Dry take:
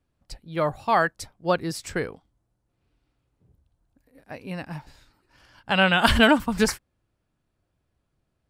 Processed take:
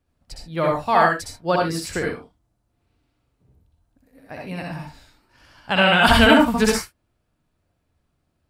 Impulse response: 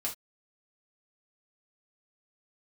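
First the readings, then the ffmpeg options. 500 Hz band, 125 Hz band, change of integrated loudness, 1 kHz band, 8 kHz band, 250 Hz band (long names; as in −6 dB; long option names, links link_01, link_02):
+4.5 dB, +3.5 dB, +4.5 dB, +5.0 dB, +4.0 dB, +4.5 dB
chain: -filter_complex "[0:a]asplit=2[link_01][link_02];[1:a]atrim=start_sample=2205,adelay=61[link_03];[link_02][link_03]afir=irnorm=-1:irlink=0,volume=-1.5dB[link_04];[link_01][link_04]amix=inputs=2:normalize=0,volume=1dB"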